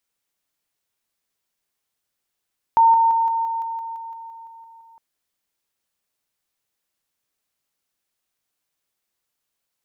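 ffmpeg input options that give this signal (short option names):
-f lavfi -i "aevalsrc='pow(10,(-10-3*floor(t/0.17))/20)*sin(2*PI*912*t)':d=2.21:s=44100"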